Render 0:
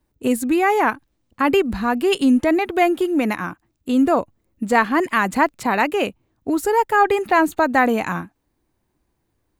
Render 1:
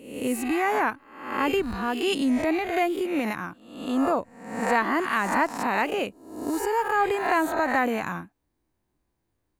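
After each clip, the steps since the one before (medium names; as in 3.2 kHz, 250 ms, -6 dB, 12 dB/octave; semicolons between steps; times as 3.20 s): reverse spectral sustain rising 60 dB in 0.71 s; trim -8.5 dB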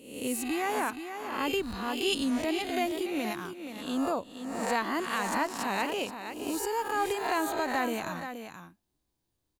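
resonant high shelf 2.7 kHz +6.5 dB, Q 1.5; on a send: delay 476 ms -9 dB; on the sum: trim -6 dB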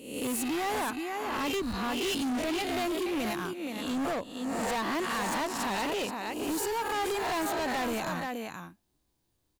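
hard clipper -33 dBFS, distortion -7 dB; trim +4.5 dB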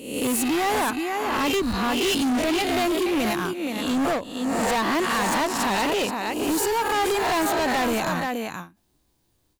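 endings held to a fixed fall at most 200 dB/s; trim +8 dB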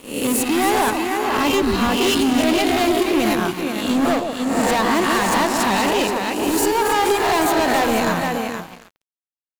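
echo whose repeats swap between lows and highs 139 ms, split 1 kHz, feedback 54%, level -4 dB; crossover distortion -39 dBFS; trim +5 dB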